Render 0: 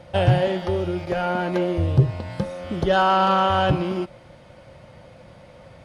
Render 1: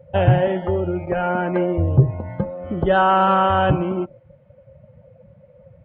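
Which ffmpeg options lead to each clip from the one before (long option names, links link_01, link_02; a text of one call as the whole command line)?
ffmpeg -i in.wav -af "afftdn=noise_reduction=19:noise_floor=-36,lowpass=frequency=2700:width=0.5412,lowpass=frequency=2700:width=1.3066,volume=2.5dB" out.wav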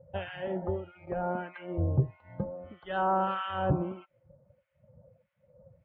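ffmpeg -i in.wav -filter_complex "[0:a]acrossover=split=1300[link_01][link_02];[link_01]aeval=exprs='val(0)*(1-1/2+1/2*cos(2*PI*1.6*n/s))':channel_layout=same[link_03];[link_02]aeval=exprs='val(0)*(1-1/2-1/2*cos(2*PI*1.6*n/s))':channel_layout=same[link_04];[link_03][link_04]amix=inputs=2:normalize=0,volume=-8.5dB" out.wav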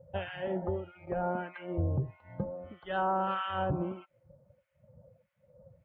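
ffmpeg -i in.wav -af "alimiter=limit=-22dB:level=0:latency=1:release=93" out.wav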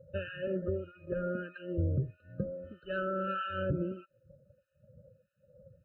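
ffmpeg -i in.wav -af "afftfilt=real='re*eq(mod(floor(b*sr/1024/610),2),0)':imag='im*eq(mod(floor(b*sr/1024/610),2),0)':win_size=1024:overlap=0.75" out.wav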